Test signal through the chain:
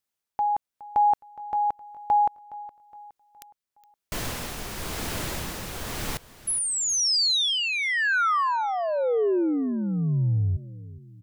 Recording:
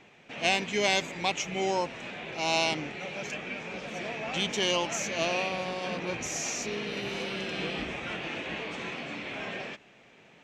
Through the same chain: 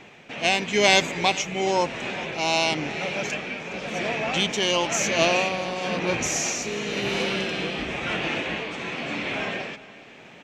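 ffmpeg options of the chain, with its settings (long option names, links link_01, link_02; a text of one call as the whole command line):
ffmpeg -i in.wav -filter_complex "[0:a]tremolo=f=0.97:d=0.44,asplit=2[link_01][link_02];[link_02]aecho=0:1:416|832|1248|1664:0.126|0.0567|0.0255|0.0115[link_03];[link_01][link_03]amix=inputs=2:normalize=0,volume=9dB" out.wav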